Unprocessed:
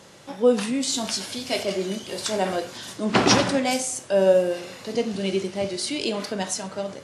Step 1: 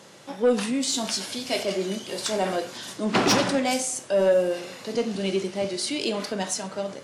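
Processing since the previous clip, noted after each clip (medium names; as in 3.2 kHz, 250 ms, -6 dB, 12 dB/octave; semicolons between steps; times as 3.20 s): high-pass 130 Hz; saturation -13 dBFS, distortion -16 dB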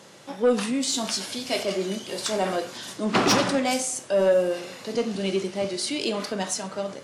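dynamic bell 1.2 kHz, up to +4 dB, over -48 dBFS, Q 6.2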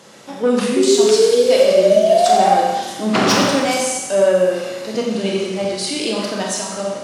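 high-pass 83 Hz; painted sound rise, 0.76–2.55 s, 370–810 Hz -19 dBFS; Schroeder reverb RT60 1.2 s, combs from 29 ms, DRR 0 dB; trim +3.5 dB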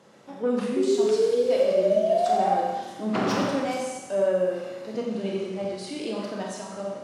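treble shelf 2.3 kHz -11 dB; trim -8.5 dB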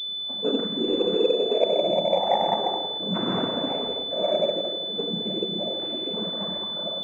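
band-passed feedback delay 159 ms, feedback 48%, band-pass 400 Hz, level -5.5 dB; noise-vocoded speech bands 16; class-D stage that switches slowly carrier 3.5 kHz; trim -2 dB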